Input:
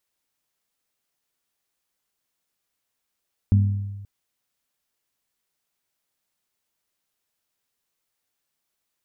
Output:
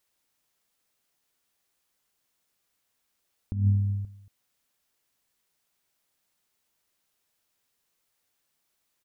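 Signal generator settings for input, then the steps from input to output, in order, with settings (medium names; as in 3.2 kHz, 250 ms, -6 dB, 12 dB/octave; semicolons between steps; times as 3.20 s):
glass hit bell, length 0.53 s, lowest mode 100 Hz, modes 3, decay 1.28 s, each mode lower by 8 dB, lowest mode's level -12 dB
compressor with a negative ratio -22 dBFS, ratio -0.5; delay 230 ms -17 dB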